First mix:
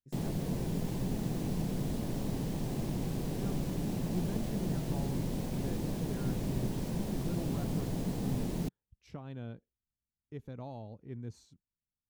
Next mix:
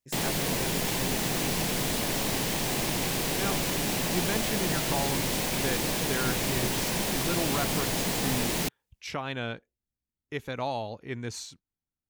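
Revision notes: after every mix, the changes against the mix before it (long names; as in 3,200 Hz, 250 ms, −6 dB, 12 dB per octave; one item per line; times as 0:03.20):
speech +4.0 dB
master: remove drawn EQ curve 180 Hz 0 dB, 2,200 Hz −21 dB, 4,200 Hz −19 dB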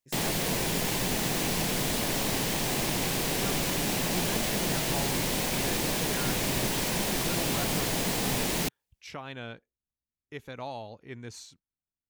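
speech −6.5 dB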